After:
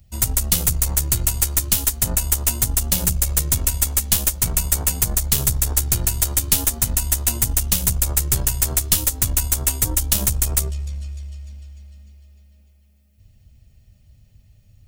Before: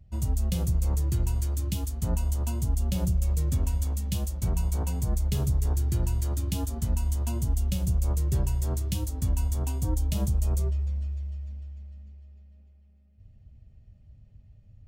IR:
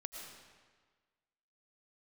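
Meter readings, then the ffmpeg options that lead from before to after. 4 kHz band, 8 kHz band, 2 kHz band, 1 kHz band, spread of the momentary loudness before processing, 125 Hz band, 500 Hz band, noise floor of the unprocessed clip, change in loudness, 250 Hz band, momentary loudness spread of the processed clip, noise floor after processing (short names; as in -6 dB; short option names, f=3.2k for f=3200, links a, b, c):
+17.0 dB, +21.5 dB, +18.0 dB, +8.5 dB, 4 LU, +1.5 dB, +4.5 dB, -55 dBFS, +10.0 dB, +2.0 dB, 3 LU, -54 dBFS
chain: -af "crystalizer=i=8.5:c=0,aeval=exprs='0.891*(cos(1*acos(clip(val(0)/0.891,-1,1)))-cos(1*PI/2))+0.126*(cos(6*acos(clip(val(0)/0.891,-1,1)))-cos(6*PI/2))':c=same,volume=1dB"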